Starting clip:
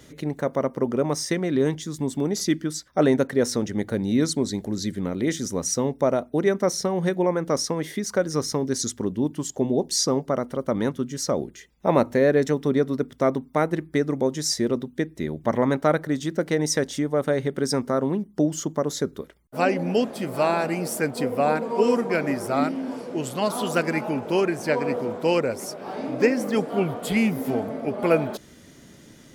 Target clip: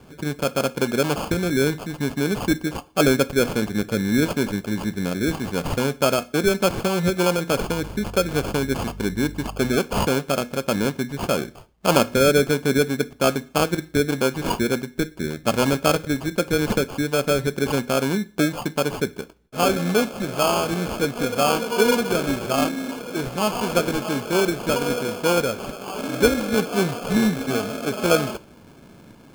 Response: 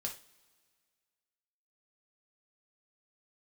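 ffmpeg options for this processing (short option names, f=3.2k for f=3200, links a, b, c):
-filter_complex "[0:a]acrusher=samples=23:mix=1:aa=0.000001,asettb=1/sr,asplit=3[a][b][c];[a]atrim=end=7.674[d];[b]atrim=start=7.67:end=9.77,asetpts=PTS-STARTPTS,afade=t=in:d=0.004:c=qsin,afade=t=out:st=2.096:d=0.004:c=qsin,aeval=exprs='val(0)+0.0141*(sin(2*PI*50*n/s)+sin(2*PI*2*50*n/s)/2+sin(2*PI*3*50*n/s)/3+sin(2*PI*4*50*n/s)/4+sin(2*PI*5*50*n/s)/5)':c=same[e];[c]atrim=start=9.766[f];[d][e]acrossfade=d=0.004:c1=hsin:c2=qsin[g];[g][f]acrossfade=d=0.004:c1=qsin:c2=hsin,asplit=2[h][i];[1:a]atrim=start_sample=2205,afade=t=out:st=0.34:d=0.01,atrim=end_sample=15435[j];[i][j]afir=irnorm=-1:irlink=0,volume=-10dB[k];[h][k]amix=inputs=2:normalize=0"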